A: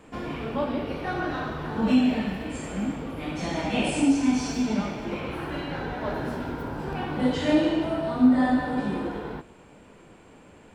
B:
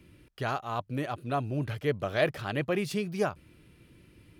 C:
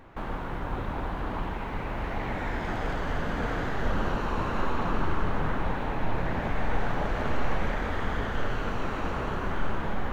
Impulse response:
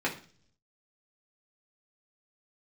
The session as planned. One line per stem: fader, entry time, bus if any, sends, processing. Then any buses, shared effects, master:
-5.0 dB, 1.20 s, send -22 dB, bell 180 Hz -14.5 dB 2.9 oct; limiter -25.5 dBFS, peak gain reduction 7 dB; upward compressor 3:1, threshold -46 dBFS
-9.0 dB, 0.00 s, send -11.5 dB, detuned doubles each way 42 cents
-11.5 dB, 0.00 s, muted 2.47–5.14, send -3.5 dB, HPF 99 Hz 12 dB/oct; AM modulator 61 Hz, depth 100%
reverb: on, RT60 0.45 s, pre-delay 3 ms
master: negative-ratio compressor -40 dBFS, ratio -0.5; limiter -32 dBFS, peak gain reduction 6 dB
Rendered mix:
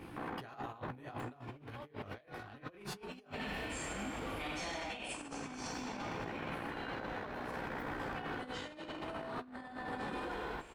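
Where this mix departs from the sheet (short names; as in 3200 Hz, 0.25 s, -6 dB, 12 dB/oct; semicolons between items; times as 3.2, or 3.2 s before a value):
stem A: missing limiter -25.5 dBFS, peak gain reduction 7 dB; stem B -9.0 dB -> 0.0 dB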